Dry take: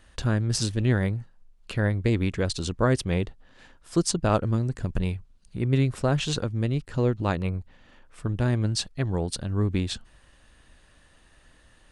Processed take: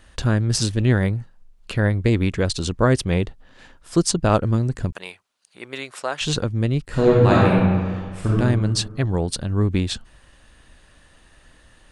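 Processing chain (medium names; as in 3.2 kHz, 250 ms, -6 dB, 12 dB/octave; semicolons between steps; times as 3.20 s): 4.92–6.21 s: high-pass 750 Hz 12 dB/octave; 6.87–8.38 s: reverb throw, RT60 1.7 s, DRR -6 dB; trim +5 dB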